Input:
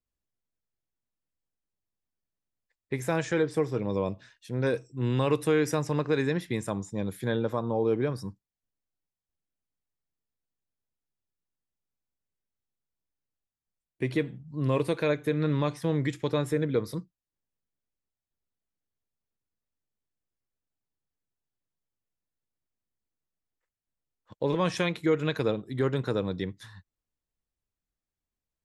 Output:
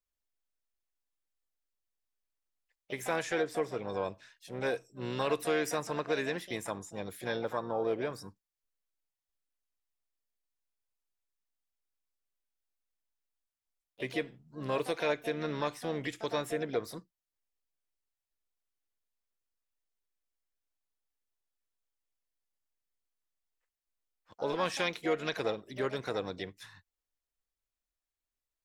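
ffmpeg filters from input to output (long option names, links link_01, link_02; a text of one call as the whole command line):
ffmpeg -i in.wav -filter_complex "[0:a]equalizer=frequency=140:width=0.55:gain=-13.5,asplit=3[link_01][link_02][link_03];[link_02]asetrate=52444,aresample=44100,atempo=0.840896,volume=-17dB[link_04];[link_03]asetrate=66075,aresample=44100,atempo=0.66742,volume=-11dB[link_05];[link_01][link_04][link_05]amix=inputs=3:normalize=0,volume=-1.5dB" out.wav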